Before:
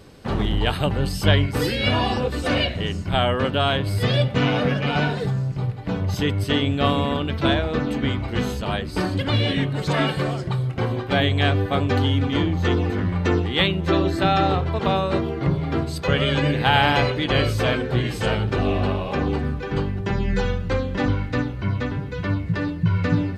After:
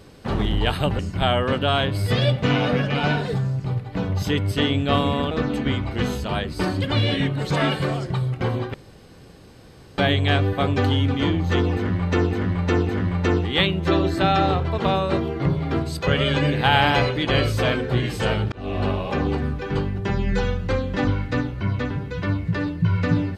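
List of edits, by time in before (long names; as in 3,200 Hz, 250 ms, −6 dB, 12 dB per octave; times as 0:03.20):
0:00.99–0:02.91: remove
0:07.23–0:07.68: remove
0:11.11: splice in room tone 1.24 s
0:12.88–0:13.44: repeat, 3 plays
0:18.53–0:18.88: fade in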